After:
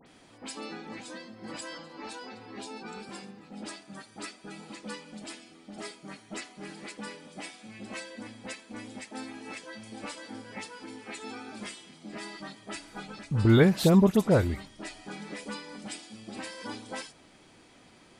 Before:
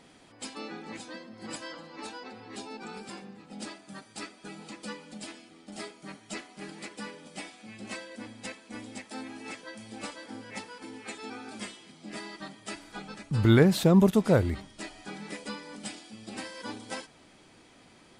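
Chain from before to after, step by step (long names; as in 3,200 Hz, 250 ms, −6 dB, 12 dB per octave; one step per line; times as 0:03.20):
all-pass dispersion highs, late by 66 ms, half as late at 2,300 Hz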